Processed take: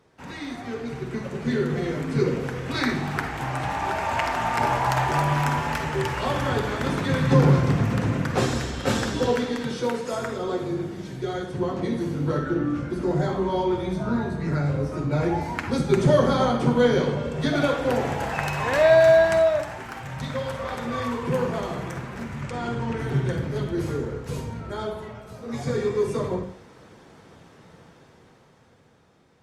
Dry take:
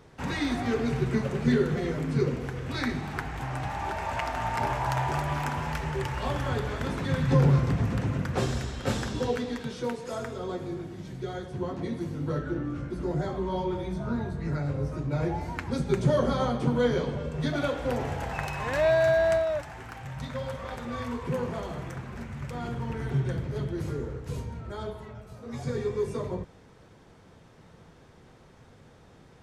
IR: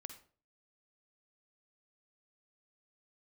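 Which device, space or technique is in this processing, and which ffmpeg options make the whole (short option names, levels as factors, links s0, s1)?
far-field microphone of a smart speaker: -filter_complex "[0:a]asettb=1/sr,asplit=3[s0][s1][s2];[s0]atrim=end=22.424[s3];[s1]atrim=start=22.42:end=22.99,asetpts=PTS-STARTPTS,afade=t=in:d=0.004:c=qsin,afade=t=out:st=0.566:d=0.004:c=qsin,lowpass=f=9300:w=0.5412,lowpass=f=9300:w=1.3066[s4];[s2]atrim=start=22.986[s5];[s3][s4]acrossfade=d=0.004:c1=hsin:c2=qsin[s6];[s6][s5]acrossfade=d=0.004:c1=qsin:c2=hsin[s7];[1:a]atrim=start_sample=2205[s8];[s7][s8]afir=irnorm=-1:irlink=0,highpass=f=140:p=1,dynaudnorm=f=280:g=13:m=3.98" -ar 48000 -c:a libopus -b:a 48k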